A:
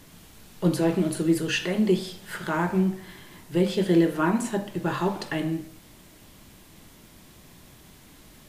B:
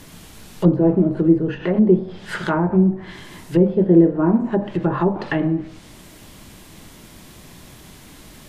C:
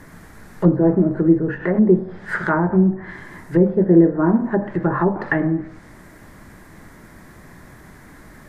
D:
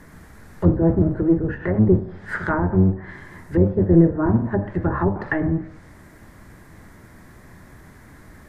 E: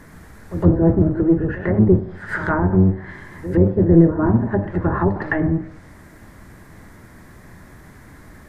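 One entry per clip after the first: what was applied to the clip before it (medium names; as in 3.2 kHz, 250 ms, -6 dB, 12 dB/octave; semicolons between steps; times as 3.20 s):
low-pass that closes with the level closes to 640 Hz, closed at -21.5 dBFS; trim +8 dB
resonant high shelf 2.3 kHz -8 dB, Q 3
octave divider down 1 oct, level -1 dB; trim -3.5 dB
pre-echo 112 ms -13 dB; trim +2 dB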